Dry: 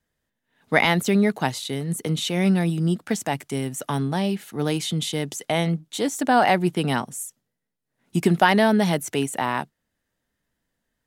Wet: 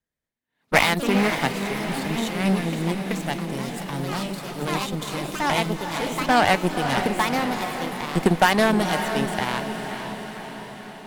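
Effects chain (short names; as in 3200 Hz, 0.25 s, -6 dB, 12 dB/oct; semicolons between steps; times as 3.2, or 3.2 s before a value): added harmonics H 5 -29 dB, 7 -18 dB, 8 -22 dB, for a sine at -4.5 dBFS; diffused feedback echo 0.516 s, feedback 60%, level -7.5 dB; echoes that change speed 0.114 s, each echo +3 st, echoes 3, each echo -6 dB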